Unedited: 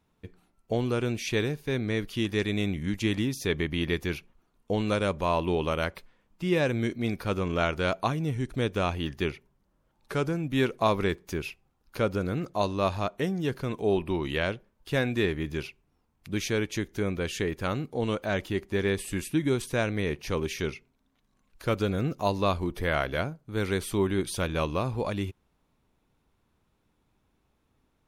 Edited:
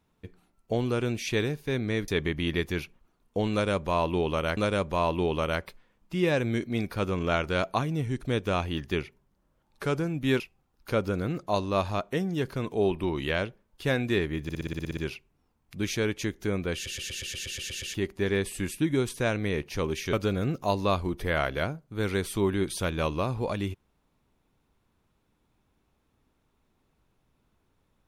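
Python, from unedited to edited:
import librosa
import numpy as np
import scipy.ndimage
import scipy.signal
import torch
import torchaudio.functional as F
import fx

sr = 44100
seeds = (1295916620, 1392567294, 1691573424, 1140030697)

y = fx.edit(x, sr, fx.cut(start_s=2.08, length_s=1.34),
    fx.repeat(start_s=4.86, length_s=1.05, count=2),
    fx.cut(start_s=10.69, length_s=0.78),
    fx.stutter(start_s=15.5, slice_s=0.06, count=10),
    fx.stutter_over(start_s=17.27, slice_s=0.12, count=10),
    fx.cut(start_s=20.66, length_s=1.04), tone=tone)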